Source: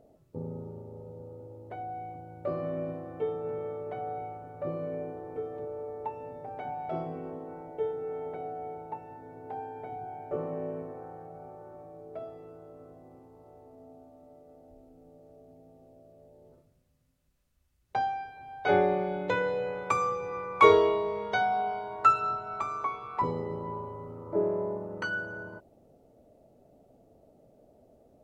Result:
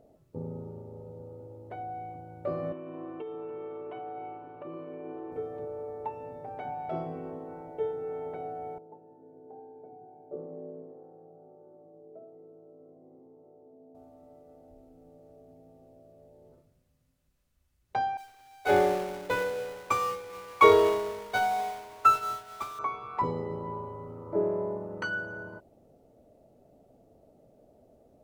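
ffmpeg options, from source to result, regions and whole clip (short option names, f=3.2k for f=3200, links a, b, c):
-filter_complex "[0:a]asettb=1/sr,asplit=3[a][b][c];[a]atrim=end=2.724[d];[b]atrim=start=2.72:end=5.32,asetpts=PTS-STARTPTS,afade=t=in:d=0.004:c=qsin,afade=t=out:st=2.596:d=0.004:c=qsin,bandreject=f=830:w=7.2,acompressor=threshold=-35dB:ratio=12:attack=3.2:release=140:knee=1:detection=peak,highpass=190,equalizer=f=200:t=q:w=4:g=-7,equalizer=f=330:t=q:w=4:g=8,equalizer=f=550:t=q:w=4:g=-6,equalizer=f=980:t=q:w=4:g=8,equalizer=f=1.9k:t=q:w=4:g=-4,equalizer=f=2.8k:t=q:w=4:g=10,lowpass=f=3.6k:w=0.5412,lowpass=f=3.6k:w=1.3066[e];[c]atrim=start=5.316[f];[d][e]acrossfade=d=0.004:c1=hsin:c2=qsin[g];[g][f]acrossfade=d=0.004:c1=qsin:c2=hsin,asettb=1/sr,asplit=3[h][i][j];[h]atrim=end=8.784[k];[i]atrim=start=8.78:end=13.95,asetpts=PTS-STARTPTS,afade=t=in:d=0.004:c=qsin,afade=t=out:st=5.166:d=0.004:c=qsin,lowshelf=f=340:g=-10,acompressor=mode=upward:threshold=-44dB:ratio=2.5:attack=3.2:release=140:knee=2.83:detection=peak,asuperpass=centerf=270:order=4:qfactor=0.76[l];[j]atrim=start=13.946[m];[k][l]acrossfade=d=0.004:c1=hsin:c2=qsin[n];[n][m]acrossfade=d=0.004:c1=qsin:c2=hsin,asettb=1/sr,asplit=3[o][p][q];[o]atrim=end=18.174[r];[p]atrim=start=18.17:end=22.79,asetpts=PTS-STARTPTS,afade=t=in:d=0.004:c=qsin,afade=t=out:st=4.616:d=0.004:c=qsin,aeval=exprs='val(0)+0.5*0.0299*sgn(val(0))':c=same,agate=range=-33dB:threshold=-23dB:ratio=3:release=100:detection=peak,equalizer=f=160:w=4.3:g=-12[s];[q]atrim=start=22.786[t];[r][s]acrossfade=d=0.004:c1=hsin:c2=qsin[u];[u][t]acrossfade=d=0.004:c1=qsin:c2=hsin"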